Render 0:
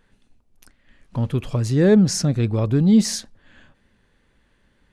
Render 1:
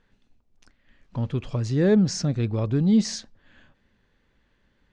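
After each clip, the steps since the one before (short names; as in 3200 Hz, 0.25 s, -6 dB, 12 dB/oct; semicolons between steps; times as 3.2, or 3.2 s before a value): LPF 6800 Hz 24 dB/oct; gain -4.5 dB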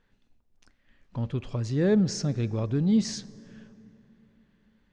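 plate-style reverb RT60 3.6 s, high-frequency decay 0.45×, DRR 18 dB; gain -3.5 dB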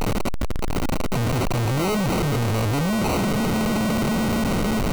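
infinite clipping; sample-rate reducer 1700 Hz, jitter 0%; gain +8 dB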